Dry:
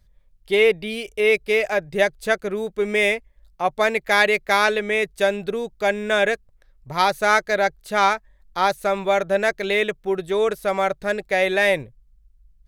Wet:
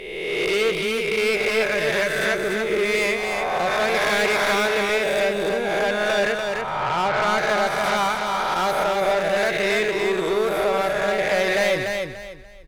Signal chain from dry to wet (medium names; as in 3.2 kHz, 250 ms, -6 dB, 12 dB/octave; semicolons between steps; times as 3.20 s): reverse spectral sustain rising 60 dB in 1.47 s; 1.63–2.32 s: peaking EQ 740 Hz -13.5 dB 0.47 oct; 6.32–7.38 s: low-pass 2.5 kHz 24 dB/octave; saturation -18 dBFS, distortion -9 dB; feedback delay 291 ms, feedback 28%, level -4.5 dB